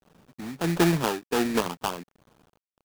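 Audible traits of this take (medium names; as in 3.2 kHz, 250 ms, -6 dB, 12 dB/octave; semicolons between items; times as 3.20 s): aliases and images of a low sample rate 2.1 kHz, jitter 20%; tremolo triangle 1.4 Hz, depth 75%; a quantiser's noise floor 10-bit, dither none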